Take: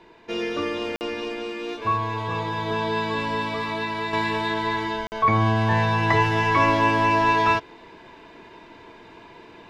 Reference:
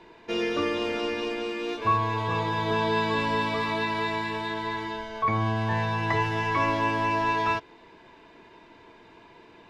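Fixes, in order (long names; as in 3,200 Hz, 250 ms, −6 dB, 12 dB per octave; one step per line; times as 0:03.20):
repair the gap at 0:00.96/0:05.07, 49 ms
level correction −6 dB, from 0:04.13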